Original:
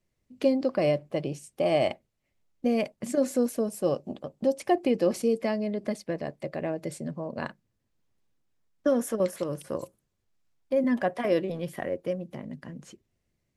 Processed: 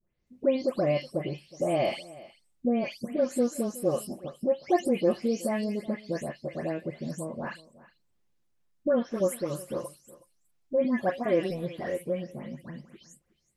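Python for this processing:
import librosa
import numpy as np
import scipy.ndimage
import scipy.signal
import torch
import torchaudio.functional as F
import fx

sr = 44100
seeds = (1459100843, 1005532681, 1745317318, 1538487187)

p1 = fx.spec_delay(x, sr, highs='late', ms=269)
y = p1 + fx.echo_single(p1, sr, ms=368, db=-20.0, dry=0)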